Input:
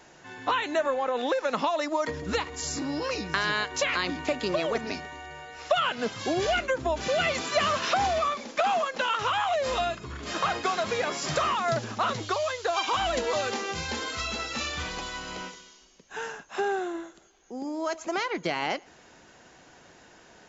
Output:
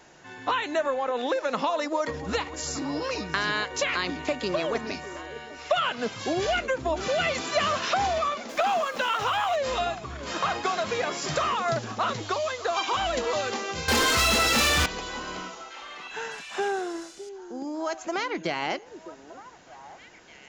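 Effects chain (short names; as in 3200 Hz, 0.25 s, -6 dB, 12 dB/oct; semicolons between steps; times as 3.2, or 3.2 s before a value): 8.49–9.56 zero-crossing step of -41.5 dBFS; 13.88–14.86 sample leveller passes 5; delay with a stepping band-pass 0.608 s, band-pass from 360 Hz, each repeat 1.4 oct, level -10.5 dB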